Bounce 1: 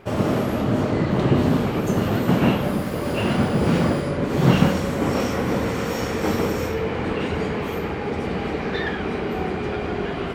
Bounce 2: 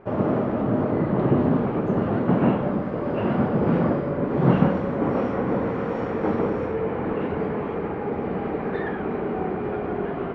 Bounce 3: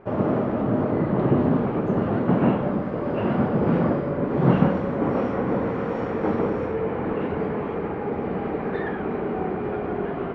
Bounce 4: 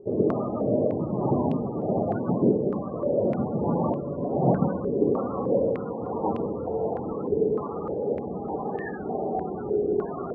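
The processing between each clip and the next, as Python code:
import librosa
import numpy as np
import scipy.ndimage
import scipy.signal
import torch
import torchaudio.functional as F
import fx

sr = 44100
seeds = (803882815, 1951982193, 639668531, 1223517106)

y1 = scipy.signal.sosfilt(scipy.signal.butter(2, 1300.0, 'lowpass', fs=sr, output='sos'), x)
y1 = fx.peak_eq(y1, sr, hz=62.0, db=-9.5, octaves=1.6)
y2 = y1
y3 = fx.quant_dither(y2, sr, seeds[0], bits=10, dither='none')
y3 = fx.spec_topn(y3, sr, count=32)
y3 = fx.filter_held_lowpass(y3, sr, hz=3.3, low_hz=420.0, high_hz=2800.0)
y3 = F.gain(torch.from_numpy(y3), -5.5).numpy()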